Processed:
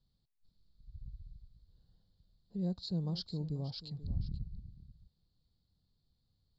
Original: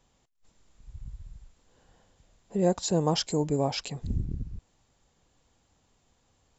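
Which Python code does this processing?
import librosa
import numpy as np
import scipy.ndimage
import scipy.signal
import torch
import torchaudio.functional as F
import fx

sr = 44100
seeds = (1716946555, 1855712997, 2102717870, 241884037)

y = fx.curve_eq(x, sr, hz=(180.0, 250.0, 880.0, 1400.0, 2500.0, 4400.0, 6300.0), db=(0, -9, -20, -18, -25, 4, -26))
y = y + 10.0 ** (-15.5 / 20.0) * np.pad(y, (int(485 * sr / 1000.0), 0))[:len(y)]
y = F.gain(torch.from_numpy(y), -6.0).numpy()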